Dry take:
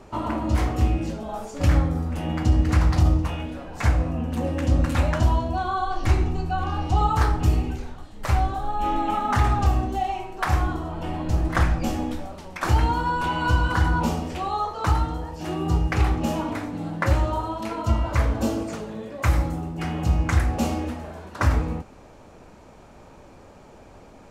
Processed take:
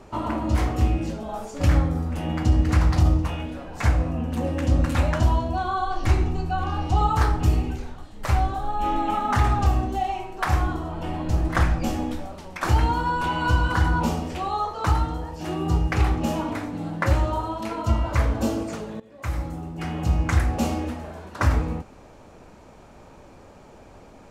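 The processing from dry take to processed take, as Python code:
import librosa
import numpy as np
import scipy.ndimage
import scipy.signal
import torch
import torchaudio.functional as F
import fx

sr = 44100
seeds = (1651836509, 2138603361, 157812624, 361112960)

y = fx.edit(x, sr, fx.fade_in_from(start_s=19.0, length_s=1.49, curve='qsin', floor_db=-17.0), tone=tone)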